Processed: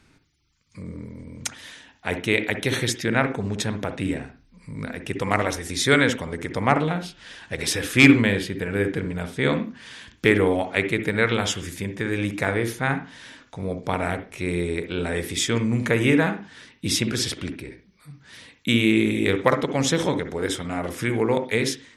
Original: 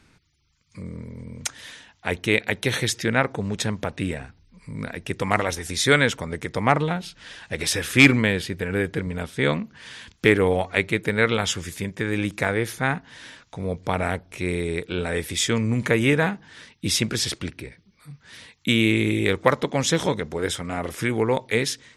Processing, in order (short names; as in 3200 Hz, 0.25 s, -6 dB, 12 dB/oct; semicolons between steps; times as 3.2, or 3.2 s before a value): on a send: bell 290 Hz +11 dB 0.77 oct + reverb, pre-delay 51 ms, DRR 9 dB; on the sum: gain -1 dB